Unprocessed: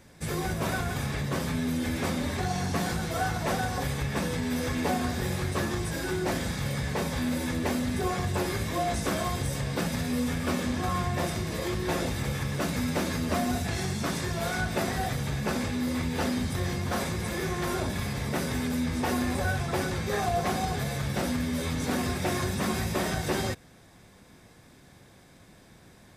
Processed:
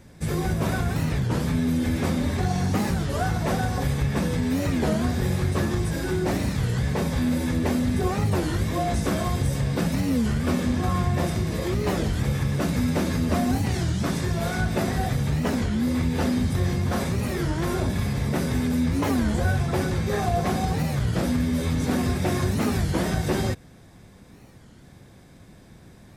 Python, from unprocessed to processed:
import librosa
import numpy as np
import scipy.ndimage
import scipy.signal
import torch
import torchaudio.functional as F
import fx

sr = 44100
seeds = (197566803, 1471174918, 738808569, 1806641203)

y = fx.low_shelf(x, sr, hz=390.0, db=8.0)
y = fx.record_warp(y, sr, rpm=33.33, depth_cents=250.0)